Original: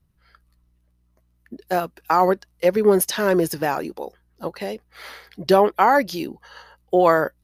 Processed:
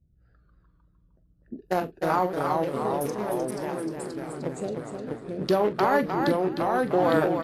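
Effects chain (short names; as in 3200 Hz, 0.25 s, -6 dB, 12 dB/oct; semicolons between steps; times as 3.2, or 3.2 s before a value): Wiener smoothing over 41 samples; 2.26–4.46 compressor 4:1, threshold -34 dBFS, peak gain reduction 18.5 dB; limiter -13.5 dBFS, peak gain reduction 11 dB; echoes that change speed 0.103 s, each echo -2 st, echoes 3; doubler 43 ms -13.5 dB; feedback echo 0.306 s, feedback 16%, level -6 dB; Vorbis 32 kbps 48000 Hz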